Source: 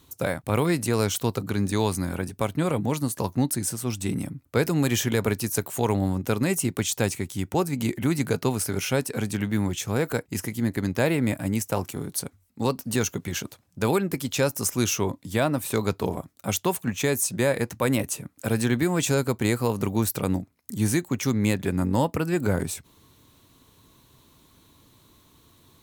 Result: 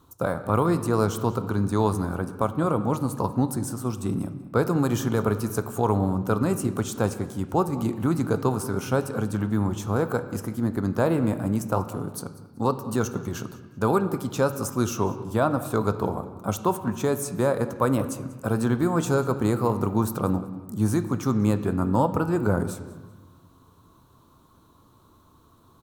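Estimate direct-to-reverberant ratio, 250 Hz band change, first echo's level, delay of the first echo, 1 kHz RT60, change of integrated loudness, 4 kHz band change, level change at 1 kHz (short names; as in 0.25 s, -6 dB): 9.5 dB, +1.0 dB, -19.5 dB, 0.191 s, 1.3 s, +0.5 dB, -9.0 dB, +4.0 dB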